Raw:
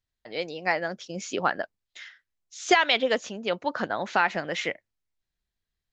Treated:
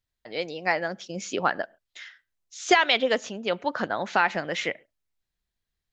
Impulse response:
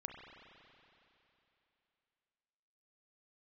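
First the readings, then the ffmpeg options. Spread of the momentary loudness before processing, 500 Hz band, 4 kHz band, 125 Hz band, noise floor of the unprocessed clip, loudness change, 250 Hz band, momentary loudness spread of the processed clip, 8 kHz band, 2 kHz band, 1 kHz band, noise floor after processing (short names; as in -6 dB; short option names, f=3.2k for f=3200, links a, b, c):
16 LU, +1.0 dB, +1.0 dB, +1.0 dB, under -85 dBFS, +1.0 dB, +1.0 dB, 16 LU, +1.0 dB, +1.0 dB, +1.0 dB, -85 dBFS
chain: -filter_complex "[0:a]asplit=2[a][b];[1:a]atrim=start_sample=2205,atrim=end_sample=6174[c];[b][c]afir=irnorm=-1:irlink=0,volume=-15.5dB[d];[a][d]amix=inputs=2:normalize=0"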